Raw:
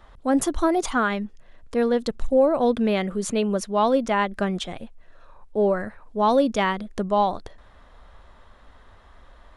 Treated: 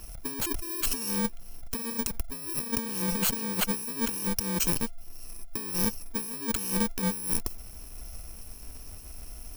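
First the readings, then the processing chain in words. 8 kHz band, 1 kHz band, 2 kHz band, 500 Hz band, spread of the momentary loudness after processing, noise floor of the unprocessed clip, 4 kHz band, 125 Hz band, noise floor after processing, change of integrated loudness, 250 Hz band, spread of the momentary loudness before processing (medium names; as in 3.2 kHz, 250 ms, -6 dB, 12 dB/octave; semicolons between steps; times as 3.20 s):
+6.0 dB, -15.5 dB, -8.0 dB, -17.5 dB, 18 LU, -52 dBFS, -0.5 dB, -2.5 dB, -44 dBFS, -6.0 dB, -8.5 dB, 11 LU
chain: bit-reversed sample order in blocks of 64 samples; compressor with a negative ratio -31 dBFS, ratio -1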